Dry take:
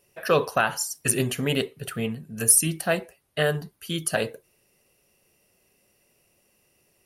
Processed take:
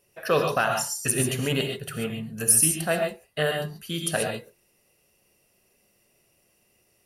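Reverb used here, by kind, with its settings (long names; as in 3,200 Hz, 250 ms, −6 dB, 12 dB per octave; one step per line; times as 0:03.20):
reverb whose tail is shaped and stops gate 160 ms rising, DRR 3 dB
level −2 dB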